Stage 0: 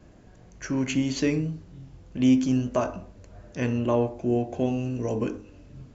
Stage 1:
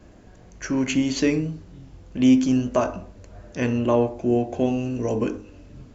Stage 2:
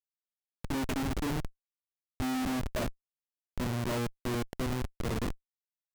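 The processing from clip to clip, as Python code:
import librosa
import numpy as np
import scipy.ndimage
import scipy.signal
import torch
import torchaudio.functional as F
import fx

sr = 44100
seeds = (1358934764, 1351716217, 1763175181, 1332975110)

y1 = fx.peak_eq(x, sr, hz=140.0, db=-6.0, octaves=0.43)
y1 = y1 * 10.0 ** (4.0 / 20.0)
y2 = fx.schmitt(y1, sr, flips_db=-21.0)
y2 = y2 * 10.0 ** (-7.5 / 20.0)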